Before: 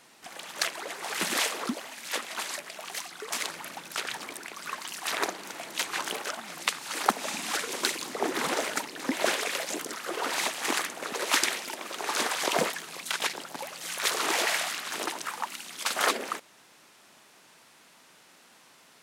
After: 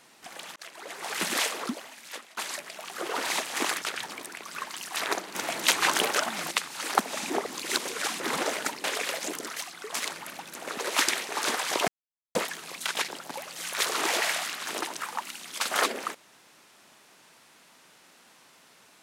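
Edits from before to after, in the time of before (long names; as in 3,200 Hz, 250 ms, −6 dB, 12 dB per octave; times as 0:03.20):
0:00.56–0:01.03: fade in
0:01.58–0:02.37: fade out linear, to −17.5 dB
0:02.94–0:03.93: swap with 0:10.02–0:10.90
0:05.46–0:06.62: clip gain +8 dB
0:07.41–0:08.31: reverse
0:08.95–0:09.30: remove
0:11.64–0:12.01: remove
0:12.60: splice in silence 0.47 s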